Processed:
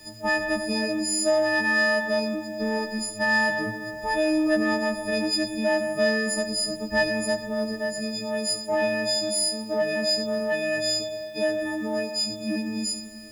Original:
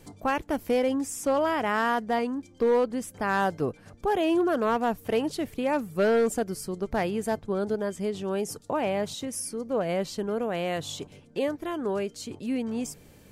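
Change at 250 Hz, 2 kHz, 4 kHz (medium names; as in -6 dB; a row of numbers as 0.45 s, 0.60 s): +1.5 dB, +9.5 dB, +12.5 dB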